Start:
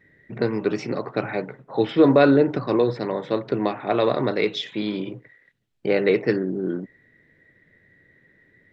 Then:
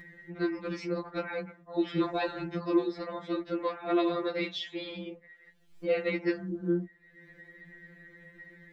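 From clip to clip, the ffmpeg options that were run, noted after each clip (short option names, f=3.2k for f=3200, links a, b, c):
-af "acompressor=mode=upward:threshold=-34dB:ratio=2.5,afftfilt=real='re*2.83*eq(mod(b,8),0)':imag='im*2.83*eq(mod(b,8),0)':win_size=2048:overlap=0.75,volume=-4.5dB"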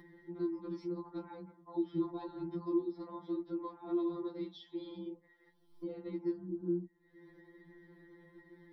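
-filter_complex "[0:a]acrossover=split=220[a][b];[b]acompressor=threshold=-51dB:ratio=2.5[c];[a][c]amix=inputs=2:normalize=0,superequalizer=6b=3.55:9b=3.55:11b=0.447:12b=0.282:15b=0.251,volume=-5.5dB"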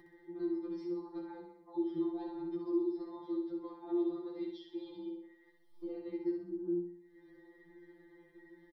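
-af "aecho=1:1:2.5:0.63,aecho=1:1:63|126|189|252|315|378:0.562|0.276|0.135|0.0662|0.0324|0.0159,volume=-4dB"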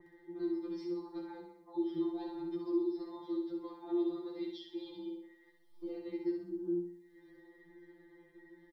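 -af "adynamicequalizer=threshold=0.00126:dfrequency=2100:dqfactor=0.7:tfrequency=2100:tqfactor=0.7:attack=5:release=100:ratio=0.375:range=3.5:mode=boostabove:tftype=highshelf"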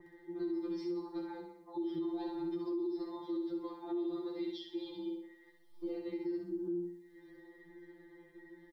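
-af "alimiter=level_in=9.5dB:limit=-24dB:level=0:latency=1:release=58,volume=-9.5dB,volume=2.5dB"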